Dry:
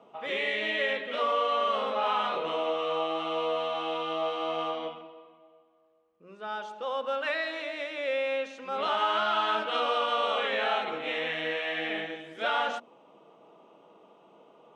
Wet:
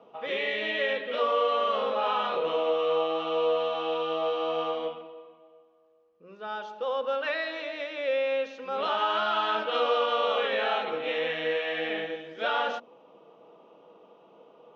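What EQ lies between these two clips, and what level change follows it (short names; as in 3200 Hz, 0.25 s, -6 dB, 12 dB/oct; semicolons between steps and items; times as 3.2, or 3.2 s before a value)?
steep low-pass 6000 Hz 36 dB/oct; bell 490 Hz +7 dB 0.22 oct; notch 2100 Hz, Q 22; 0.0 dB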